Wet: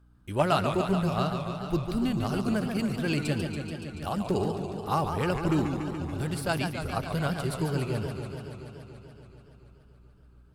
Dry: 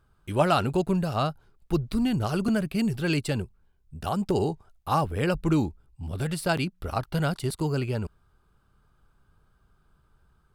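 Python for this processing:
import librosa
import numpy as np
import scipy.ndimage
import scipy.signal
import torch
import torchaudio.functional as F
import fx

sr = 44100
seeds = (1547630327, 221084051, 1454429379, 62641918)

y = fx.add_hum(x, sr, base_hz=60, snr_db=28)
y = fx.cheby_harmonics(y, sr, harmonics=(3,), levels_db=(-23,), full_scale_db=-9.0)
y = fx.echo_warbled(y, sr, ms=143, feedback_pct=78, rate_hz=2.8, cents=178, wet_db=-7.0)
y = y * 10.0 ** (-1.5 / 20.0)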